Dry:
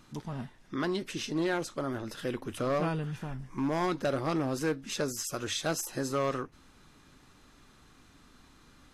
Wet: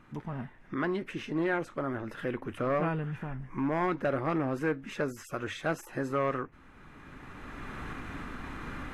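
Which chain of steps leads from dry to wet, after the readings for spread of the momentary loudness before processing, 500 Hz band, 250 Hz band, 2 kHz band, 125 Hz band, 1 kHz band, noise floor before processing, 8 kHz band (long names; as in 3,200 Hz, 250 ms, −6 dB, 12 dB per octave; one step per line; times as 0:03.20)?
9 LU, +0.5 dB, +0.5 dB, +2.5 dB, +0.5 dB, +1.5 dB, −59 dBFS, −14.5 dB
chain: camcorder AGC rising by 14 dB per second
high shelf with overshoot 3,100 Hz −13 dB, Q 1.5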